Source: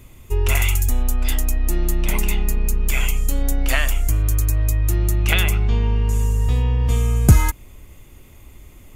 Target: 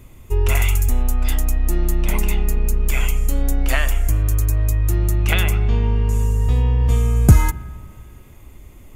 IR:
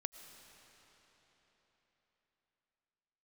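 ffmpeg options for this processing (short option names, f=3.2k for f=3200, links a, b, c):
-filter_complex "[0:a]asplit=2[a][b];[1:a]atrim=start_sample=2205,asetrate=88200,aresample=44100,lowpass=2.2k[c];[b][c]afir=irnorm=-1:irlink=0,volume=2dB[d];[a][d]amix=inputs=2:normalize=0,volume=-2dB"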